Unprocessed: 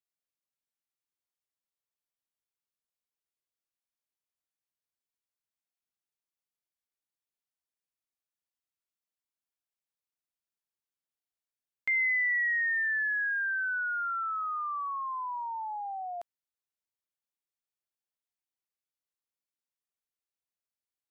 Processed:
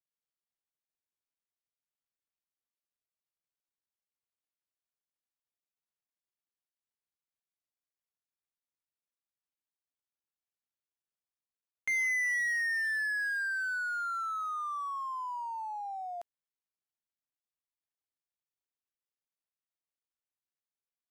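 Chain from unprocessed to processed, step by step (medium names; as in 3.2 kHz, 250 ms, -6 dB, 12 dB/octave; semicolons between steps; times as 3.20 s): median filter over 9 samples; tone controls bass 0 dB, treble +4 dB; trim -2 dB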